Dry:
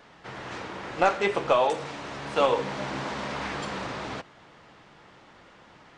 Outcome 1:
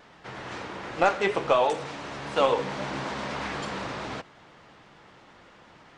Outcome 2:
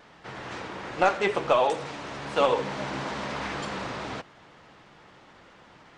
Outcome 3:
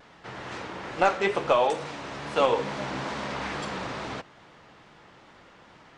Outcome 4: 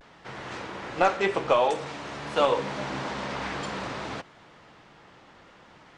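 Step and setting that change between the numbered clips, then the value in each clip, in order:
pitch vibrato, speed: 8.5, 14, 2.3, 0.53 Hertz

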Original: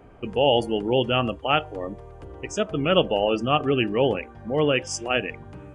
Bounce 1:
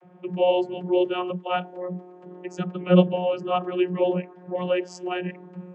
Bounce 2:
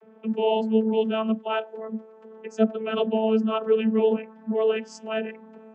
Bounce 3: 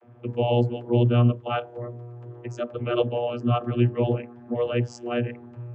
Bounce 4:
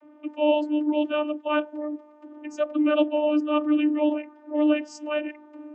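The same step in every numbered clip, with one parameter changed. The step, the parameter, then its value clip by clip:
channel vocoder, frequency: 180, 220, 120, 300 Hertz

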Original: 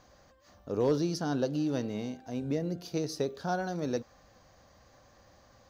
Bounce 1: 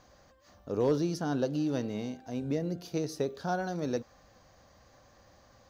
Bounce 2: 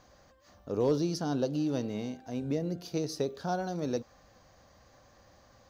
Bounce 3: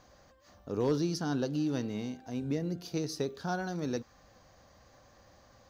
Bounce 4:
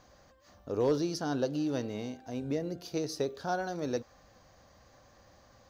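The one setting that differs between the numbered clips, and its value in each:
dynamic equaliser, frequency: 4,700, 1,700, 590, 180 Hertz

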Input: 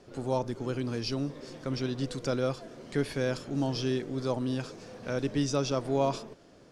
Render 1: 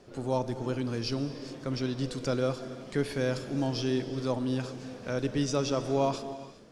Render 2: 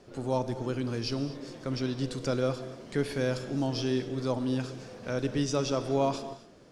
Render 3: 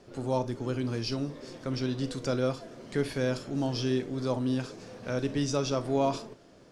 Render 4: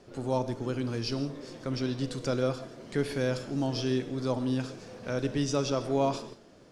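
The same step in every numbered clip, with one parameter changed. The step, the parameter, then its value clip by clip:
reverb whose tail is shaped and stops, gate: 440, 280, 80, 190 milliseconds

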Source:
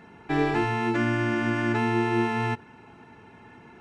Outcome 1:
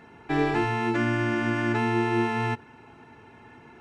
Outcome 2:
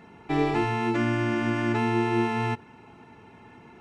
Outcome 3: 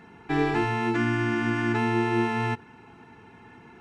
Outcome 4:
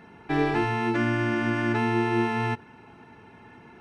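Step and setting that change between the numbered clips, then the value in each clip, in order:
notch filter, centre frequency: 190, 1,600, 590, 7,200 Hertz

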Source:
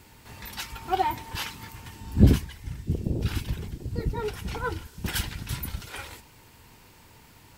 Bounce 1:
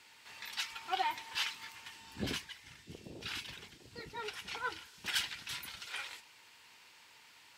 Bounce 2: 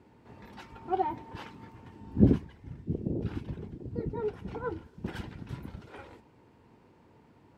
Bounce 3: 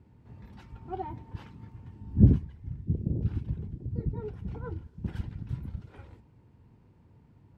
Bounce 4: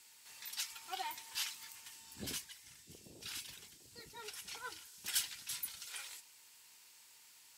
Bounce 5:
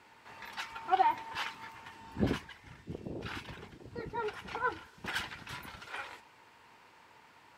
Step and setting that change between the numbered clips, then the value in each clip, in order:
resonant band-pass, frequency: 3,100, 330, 130, 7,900, 1,200 Hertz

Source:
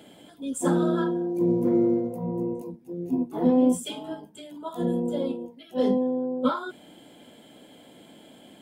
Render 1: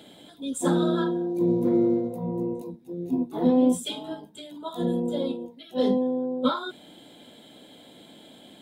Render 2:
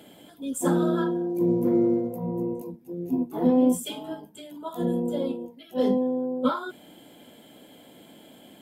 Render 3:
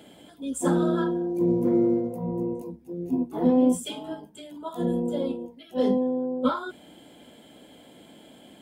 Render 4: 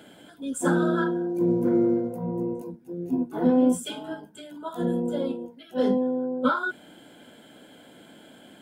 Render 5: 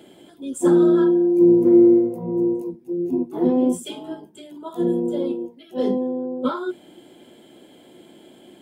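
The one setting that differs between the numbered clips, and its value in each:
parametric band, centre frequency: 3,800, 13,000, 67, 1,500, 360 Hertz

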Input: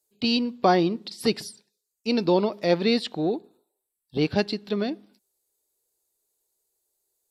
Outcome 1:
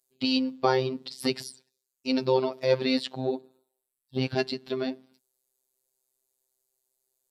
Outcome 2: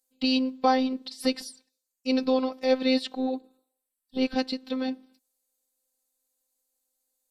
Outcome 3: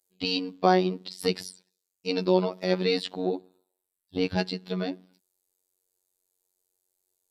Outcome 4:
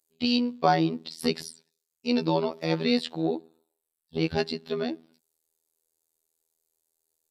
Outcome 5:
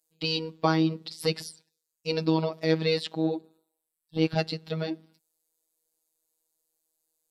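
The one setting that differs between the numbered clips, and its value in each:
phases set to zero, frequency: 130, 260, 92, 81, 160 Hertz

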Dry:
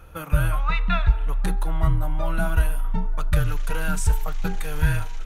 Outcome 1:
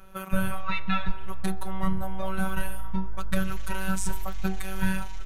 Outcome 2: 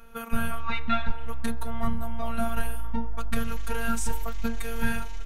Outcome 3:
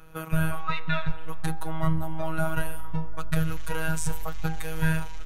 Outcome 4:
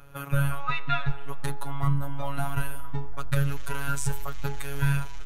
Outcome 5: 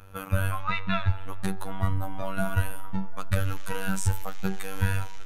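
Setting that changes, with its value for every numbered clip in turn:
phases set to zero, frequency: 190, 230, 160, 140, 96 Hertz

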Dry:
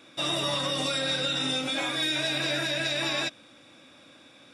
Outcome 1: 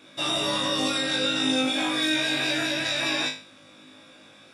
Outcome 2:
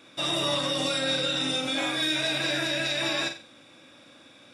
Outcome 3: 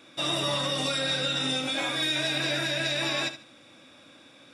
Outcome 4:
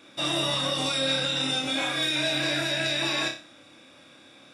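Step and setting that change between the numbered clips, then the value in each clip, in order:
flutter between parallel walls, walls apart: 3.3, 7.7, 12.4, 5.1 metres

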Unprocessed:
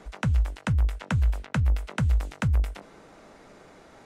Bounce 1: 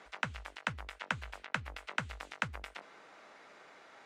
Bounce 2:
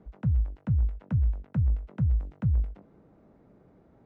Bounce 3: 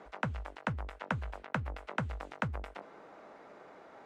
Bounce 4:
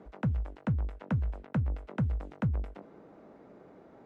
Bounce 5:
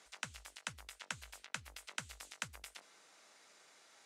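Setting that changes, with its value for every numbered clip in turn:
resonant band-pass, frequency: 2,100, 110, 840, 290, 7,400 Hertz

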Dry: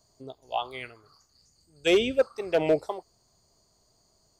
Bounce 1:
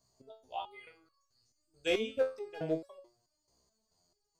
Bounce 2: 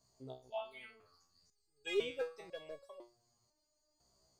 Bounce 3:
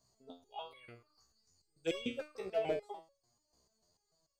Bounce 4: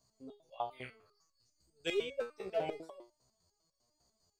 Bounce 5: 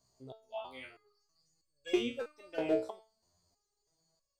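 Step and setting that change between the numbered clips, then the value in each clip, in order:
step-sequenced resonator, speed: 4.6, 2, 6.8, 10, 3.1 Hertz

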